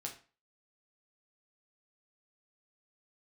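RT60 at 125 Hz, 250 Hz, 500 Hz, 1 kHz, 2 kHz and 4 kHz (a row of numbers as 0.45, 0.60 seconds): 0.35, 0.35, 0.35, 0.35, 0.35, 0.30 seconds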